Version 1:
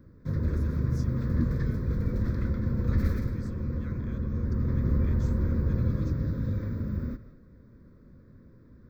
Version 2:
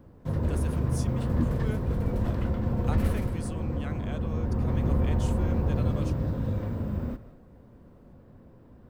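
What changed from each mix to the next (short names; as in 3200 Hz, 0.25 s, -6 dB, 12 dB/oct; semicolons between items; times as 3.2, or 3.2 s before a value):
speech +7.0 dB; master: remove fixed phaser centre 2900 Hz, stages 6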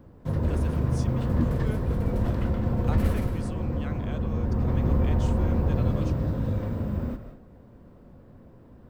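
speech: add LPF 6900 Hz 12 dB/oct; background: send +7.5 dB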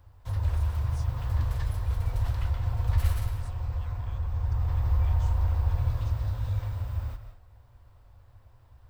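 speech -10.5 dB; master: add EQ curve 110 Hz 0 dB, 170 Hz -29 dB, 500 Hz -16 dB, 820 Hz -3 dB, 1600 Hz -4 dB, 2400 Hz -1 dB, 4000 Hz +3 dB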